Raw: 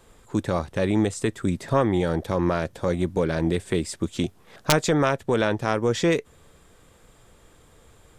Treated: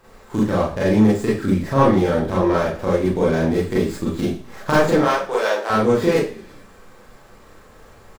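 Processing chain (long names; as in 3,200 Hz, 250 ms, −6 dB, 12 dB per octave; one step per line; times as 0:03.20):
running median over 15 samples
0:04.98–0:05.70: high-pass filter 470 Hz 24 dB per octave
echo with shifted repeats 109 ms, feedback 59%, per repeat −53 Hz, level −23 dB
four-comb reverb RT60 0.35 s, combs from 29 ms, DRR −7.5 dB
one half of a high-frequency compander encoder only
level −1.5 dB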